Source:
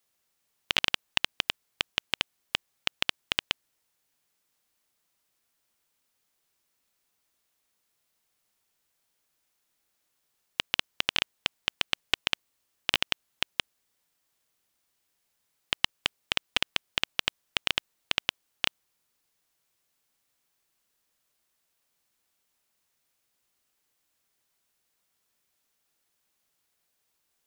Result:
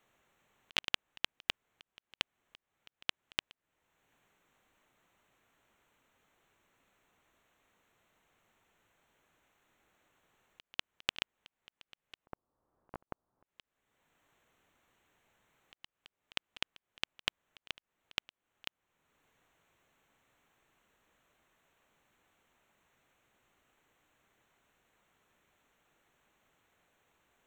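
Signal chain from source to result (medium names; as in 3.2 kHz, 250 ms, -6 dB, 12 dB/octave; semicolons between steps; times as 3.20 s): local Wiener filter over 9 samples; slow attack 630 ms; 12.26–13.45 s: inverse Chebyshev low-pass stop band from 4.9 kHz, stop band 70 dB; trim +12 dB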